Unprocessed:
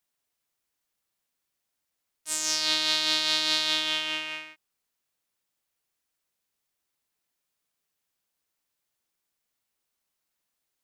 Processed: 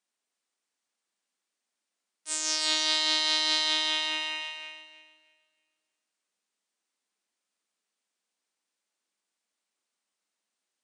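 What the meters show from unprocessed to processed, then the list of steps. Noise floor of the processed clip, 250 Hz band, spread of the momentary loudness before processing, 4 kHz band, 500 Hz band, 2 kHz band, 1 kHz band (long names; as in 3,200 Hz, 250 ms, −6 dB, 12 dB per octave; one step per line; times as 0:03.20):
below −85 dBFS, −2.0 dB, 11 LU, −0.5 dB, −1.0 dB, −0.5 dB, +1.0 dB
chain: feedback echo with a high-pass in the loop 314 ms, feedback 25%, high-pass 410 Hz, level −6.5 dB
brick-wall band-pass 180–9,900 Hz
comb and all-pass reverb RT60 2.1 s, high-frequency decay 0.75×, pre-delay 115 ms, DRR 16.5 dB
level −1.5 dB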